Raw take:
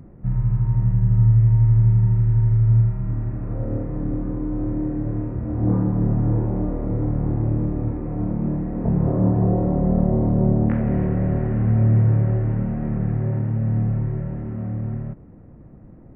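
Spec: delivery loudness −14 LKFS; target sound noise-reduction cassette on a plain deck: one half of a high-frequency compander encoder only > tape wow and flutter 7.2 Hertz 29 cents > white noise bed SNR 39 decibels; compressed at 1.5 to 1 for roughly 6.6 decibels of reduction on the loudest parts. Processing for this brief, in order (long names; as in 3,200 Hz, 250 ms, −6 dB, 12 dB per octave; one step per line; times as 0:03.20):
downward compressor 1.5 to 1, threshold −31 dBFS
one half of a high-frequency compander encoder only
tape wow and flutter 7.2 Hz 29 cents
white noise bed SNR 39 dB
level +12.5 dB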